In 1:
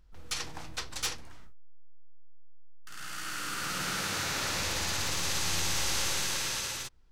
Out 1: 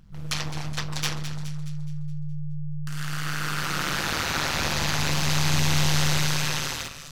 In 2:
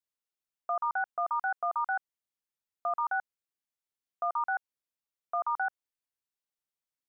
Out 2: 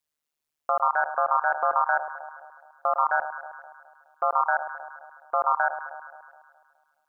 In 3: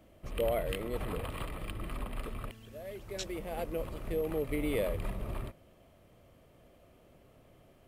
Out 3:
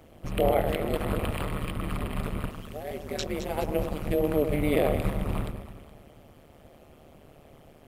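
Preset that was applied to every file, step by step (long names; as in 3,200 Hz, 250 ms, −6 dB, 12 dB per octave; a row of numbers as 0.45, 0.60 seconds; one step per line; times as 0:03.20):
delay that swaps between a low-pass and a high-pass 105 ms, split 1,300 Hz, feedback 68%, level −8.5 dB
dynamic equaliser 8,800 Hz, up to −7 dB, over −50 dBFS, Q 0.79
amplitude modulation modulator 150 Hz, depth 100%
normalise the peak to −9 dBFS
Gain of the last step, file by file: +11.0, +11.0, +11.0 decibels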